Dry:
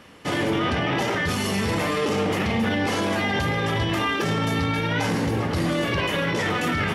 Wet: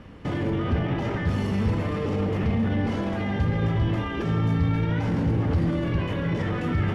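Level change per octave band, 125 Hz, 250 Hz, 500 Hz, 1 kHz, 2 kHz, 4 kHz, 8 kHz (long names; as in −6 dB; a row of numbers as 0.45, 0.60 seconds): +3.5 dB, −0.5 dB, −4.5 dB, −8.0 dB, −10.0 dB, −13.0 dB, below −15 dB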